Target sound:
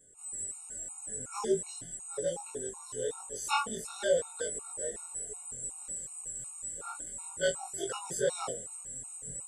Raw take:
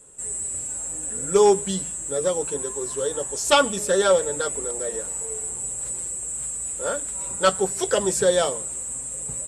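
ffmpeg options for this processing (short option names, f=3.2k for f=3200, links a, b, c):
-af "afftfilt=real='re':imag='-im':win_size=2048:overlap=0.75,afftfilt=real='re*gt(sin(2*PI*2.7*pts/sr)*(1-2*mod(floor(b*sr/1024/730),2)),0)':imag='im*gt(sin(2*PI*2.7*pts/sr)*(1-2*mod(floor(b*sr/1024/730),2)),0)':win_size=1024:overlap=0.75,volume=-4.5dB"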